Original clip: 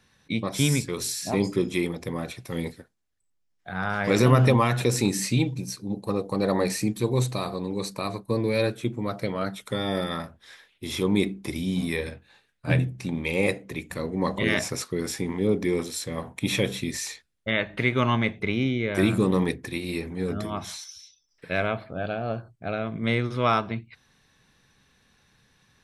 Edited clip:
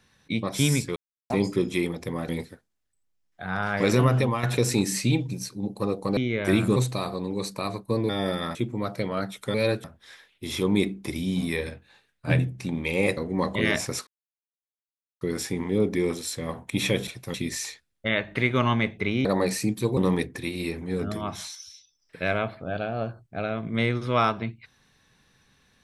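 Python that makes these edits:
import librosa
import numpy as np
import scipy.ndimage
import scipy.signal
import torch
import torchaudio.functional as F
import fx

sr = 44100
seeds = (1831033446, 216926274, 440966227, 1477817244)

y = fx.edit(x, sr, fx.silence(start_s=0.96, length_s=0.34),
    fx.move(start_s=2.29, length_s=0.27, to_s=16.76),
    fx.fade_out_to(start_s=4.04, length_s=0.66, floor_db=-7.5),
    fx.swap(start_s=6.44, length_s=0.72, other_s=18.67, other_length_s=0.59),
    fx.swap(start_s=8.49, length_s=0.3, other_s=9.78, other_length_s=0.46),
    fx.cut(start_s=13.57, length_s=0.43),
    fx.insert_silence(at_s=14.9, length_s=1.14), tone=tone)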